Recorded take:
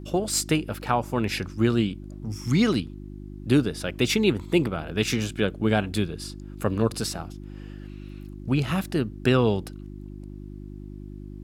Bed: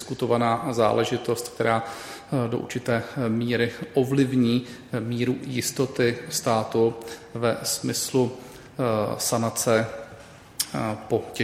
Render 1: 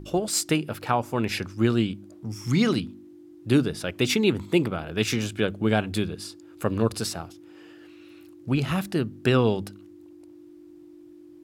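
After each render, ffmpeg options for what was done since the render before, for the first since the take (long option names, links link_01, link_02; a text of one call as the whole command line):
ffmpeg -i in.wav -af "bandreject=frequency=50:width_type=h:width=4,bandreject=frequency=100:width_type=h:width=4,bandreject=frequency=150:width_type=h:width=4,bandreject=frequency=200:width_type=h:width=4,bandreject=frequency=250:width_type=h:width=4" out.wav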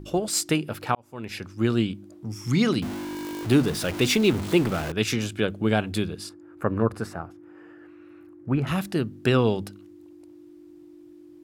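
ffmpeg -i in.wav -filter_complex "[0:a]asettb=1/sr,asplit=3[link_01][link_02][link_03];[link_01]atrim=end=2.824[link_04];[link_02]atrim=start=2.82:end=4.92,asetpts=PTS-STARTPTS,afade=type=in:duration=0.004:curve=qsin,afade=type=out:start_time=2.096:duration=0.004:curve=qsin,aeval=exprs='val(0)+0.5*0.0376*sgn(val(0))':channel_layout=same[link_05];[link_03]atrim=start=4.916[link_06];[link_04][link_05]acrossfade=duration=0.004:curve1=hsin:curve2=qsin[link_07];[link_07][link_06]acrossfade=duration=0.004:curve1=qsin:curve2=hsin,asettb=1/sr,asplit=3[link_08][link_09][link_10];[link_08]atrim=end=6.294[link_11];[link_09]atrim=start=6.29:end=8.67,asetpts=PTS-STARTPTS,afade=type=in:duration=0.004:curve=qsin,afade=type=out:start_time=2.376:duration=0.004:curve=qsin,highshelf=frequency=2400:width_type=q:width=1.5:gain=-14[link_12];[link_10]atrim=start=8.666[link_13];[link_11][link_12]acrossfade=duration=0.004:curve1=hsin:curve2=qsin[link_14];[link_14][link_13]acrossfade=duration=0.004:curve1=qsin:curve2=hsin,asplit=2[link_15][link_16];[link_15]atrim=end=0.95,asetpts=PTS-STARTPTS,afade=type=out:start_time=0.946:duration=0.004:curve=hsin[link_17];[link_16]atrim=start=0.95,asetpts=PTS-STARTPTS,afade=type=in:duration=0.83[link_18];[link_17][link_18]concat=n=2:v=0:a=1" out.wav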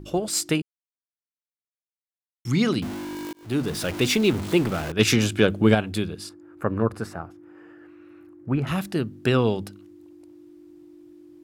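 ffmpeg -i in.wav -filter_complex "[0:a]asettb=1/sr,asplit=3[link_01][link_02][link_03];[link_01]atrim=end=4.994[link_04];[link_02]atrim=start=4.99:end=5.75,asetpts=PTS-STARTPTS,afade=type=in:duration=0.004:curve=qsin,afade=type=out:start_time=0.756:duration=0.004:curve=qsin,acontrast=68[link_05];[link_03]atrim=start=5.746[link_06];[link_04][link_05]acrossfade=duration=0.004:curve1=hsin:curve2=qsin[link_07];[link_07][link_06]acrossfade=duration=0.004:curve1=qsin:curve2=hsin,asplit=4[link_08][link_09][link_10][link_11];[link_08]atrim=end=0.62,asetpts=PTS-STARTPTS,afade=type=out:start_time=0.616:duration=0.004:curve=hsin[link_12];[link_09]atrim=start=0.62:end=2.45,asetpts=PTS-STARTPTS,volume=0[link_13];[link_10]atrim=start=2.45:end=3.33,asetpts=PTS-STARTPTS,afade=type=in:duration=0.004:curve=hsin,afade=type=out:start_time=0.876:duration=0.004:curve=hsin[link_14];[link_11]atrim=start=3.33,asetpts=PTS-STARTPTS,afade=type=in:duration=0.46[link_15];[link_12][link_13][link_14][link_15]concat=n=4:v=0:a=1" out.wav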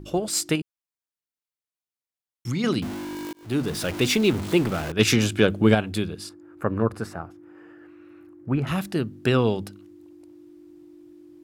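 ffmpeg -i in.wav -filter_complex "[0:a]asettb=1/sr,asplit=3[link_01][link_02][link_03];[link_01]atrim=end=0.554[link_04];[link_02]atrim=start=0.55:end=2.64,asetpts=PTS-STARTPTS,afade=type=in:duration=0.004:curve=qsin,afade=type=out:start_time=2.086:duration=0.004:curve=qsin,acompressor=threshold=-22dB:ratio=6:attack=3.2:release=140:knee=1:detection=peak[link_05];[link_03]atrim=start=2.636[link_06];[link_04][link_05]acrossfade=duration=0.004:curve1=hsin:curve2=qsin[link_07];[link_07][link_06]acrossfade=duration=0.004:curve1=qsin:curve2=hsin" out.wav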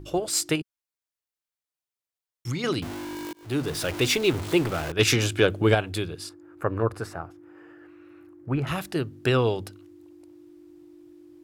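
ffmpeg -i in.wav -af "equalizer=frequency=210:width=3.6:gain=-13.5" out.wav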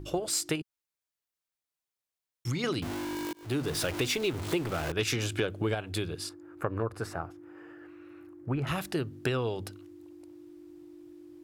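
ffmpeg -i in.wav -af "acompressor=threshold=-27dB:ratio=5" out.wav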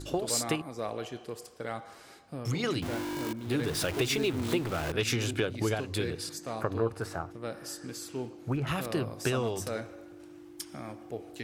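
ffmpeg -i in.wav -i bed.wav -filter_complex "[1:a]volume=-15dB[link_01];[0:a][link_01]amix=inputs=2:normalize=0" out.wav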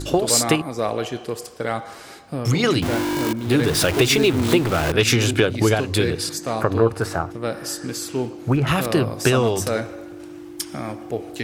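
ffmpeg -i in.wav -af "volume=12dB,alimiter=limit=-2dB:level=0:latency=1" out.wav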